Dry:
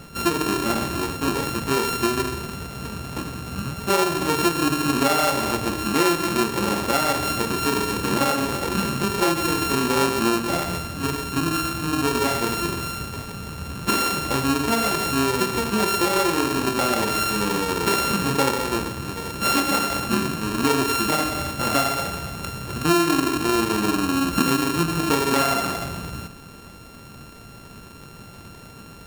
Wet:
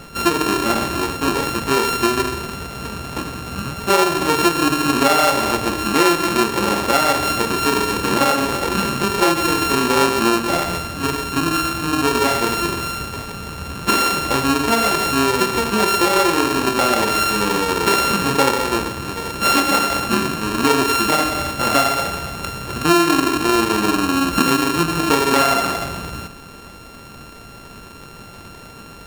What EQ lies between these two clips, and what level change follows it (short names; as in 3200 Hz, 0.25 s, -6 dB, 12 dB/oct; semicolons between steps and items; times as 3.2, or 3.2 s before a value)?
bell 130 Hz -5.5 dB 2.2 oct; high shelf 6400 Hz -4 dB; +6.0 dB